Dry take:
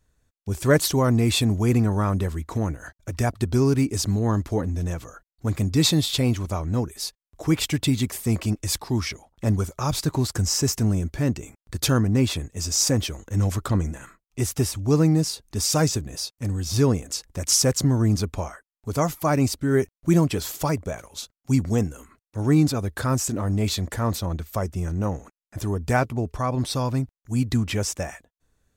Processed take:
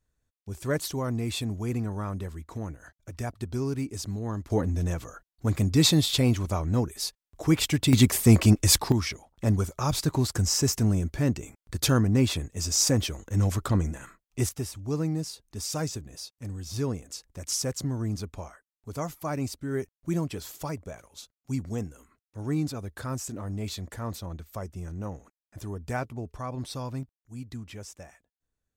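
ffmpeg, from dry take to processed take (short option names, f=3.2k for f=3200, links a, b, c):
-af "asetnsamples=n=441:p=0,asendcmd='4.5 volume volume -1dB;7.93 volume volume 6dB;8.92 volume volume -2dB;14.49 volume volume -10dB;27.03 volume volume -16.5dB',volume=-10dB"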